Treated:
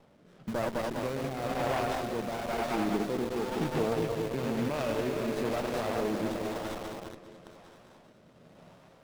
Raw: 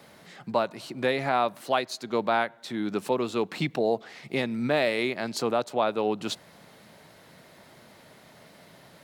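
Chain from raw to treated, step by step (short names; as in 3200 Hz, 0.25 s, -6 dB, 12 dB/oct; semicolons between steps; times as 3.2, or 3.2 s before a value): regenerating reverse delay 0.103 s, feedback 83%, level -7 dB; LPF 3800 Hz 6 dB/oct; limiter -20.5 dBFS, peak gain reduction 11 dB; on a send: thinning echo 0.401 s, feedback 56%, high-pass 680 Hz, level -3.5 dB; on the sum: rotary speaker horn 1 Hz; in parallel at -4 dB: bit-crush 6-bit; on the sum: running maximum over 17 samples; gain -3.5 dB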